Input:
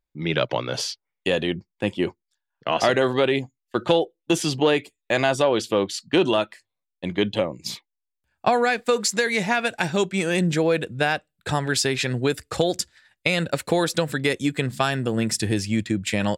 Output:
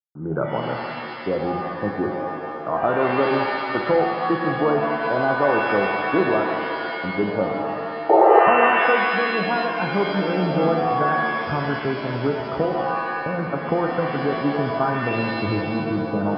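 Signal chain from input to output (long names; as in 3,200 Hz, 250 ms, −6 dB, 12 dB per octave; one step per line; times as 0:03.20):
bit reduction 8 bits
sound drawn into the spectrogram noise, 0:08.09–0:08.40, 320–920 Hz −12 dBFS
Chebyshev low-pass filter 1,500 Hz, order 8
reverb with rising layers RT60 2 s, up +7 semitones, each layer −2 dB, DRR 3 dB
level −1 dB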